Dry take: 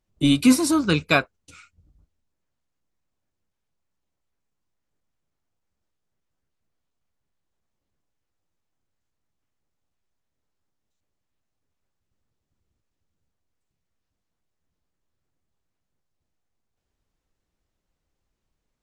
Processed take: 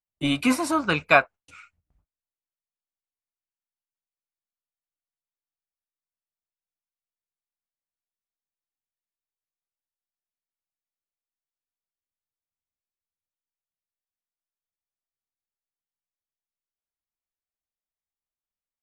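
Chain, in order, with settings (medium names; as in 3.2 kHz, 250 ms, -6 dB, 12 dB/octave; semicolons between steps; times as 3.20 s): dynamic bell 680 Hz, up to +4 dB, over -34 dBFS, Q 0.96; gate with hold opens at -50 dBFS; high-order bell 1.3 kHz +9.5 dB 2.5 oct; trim -7.5 dB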